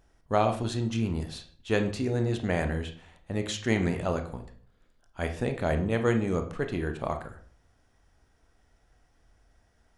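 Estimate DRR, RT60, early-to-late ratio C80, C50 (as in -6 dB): 6.0 dB, 0.45 s, 14.5 dB, 11.0 dB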